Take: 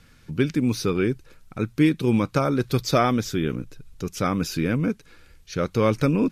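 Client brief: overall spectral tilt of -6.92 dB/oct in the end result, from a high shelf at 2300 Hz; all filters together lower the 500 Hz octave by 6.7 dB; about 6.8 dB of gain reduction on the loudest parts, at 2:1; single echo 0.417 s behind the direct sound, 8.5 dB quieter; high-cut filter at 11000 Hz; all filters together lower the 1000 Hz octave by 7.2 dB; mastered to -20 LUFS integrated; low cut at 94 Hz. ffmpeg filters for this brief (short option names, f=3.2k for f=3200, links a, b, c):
-af "highpass=94,lowpass=11k,equalizer=f=500:t=o:g=-7,equalizer=f=1k:t=o:g=-6.5,highshelf=f=2.3k:g=-6.5,acompressor=threshold=-30dB:ratio=2,aecho=1:1:417:0.376,volume=12dB"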